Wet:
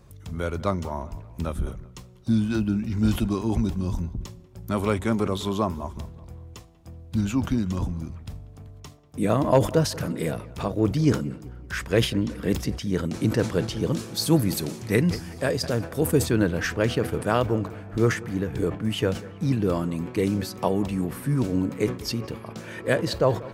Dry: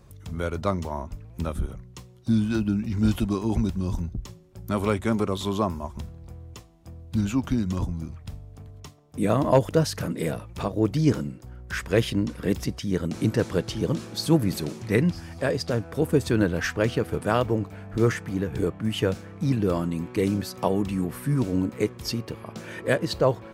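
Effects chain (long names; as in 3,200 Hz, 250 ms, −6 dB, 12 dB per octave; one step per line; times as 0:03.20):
0:13.92–0:16.26: high-shelf EQ 6,700 Hz +8.5 dB
delay with a low-pass on its return 190 ms, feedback 45%, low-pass 2,900 Hz, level −19.5 dB
level that may fall only so fast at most 140 dB per second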